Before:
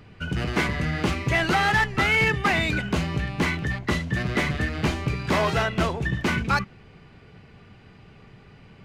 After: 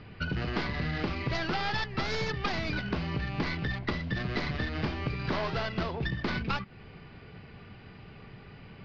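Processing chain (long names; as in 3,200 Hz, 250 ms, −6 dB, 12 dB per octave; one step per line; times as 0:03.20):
stylus tracing distortion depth 0.39 ms
elliptic low-pass filter 4,900 Hz, stop band 50 dB
downward compressor, threshold −30 dBFS, peak gain reduction 11.5 dB
level +1.5 dB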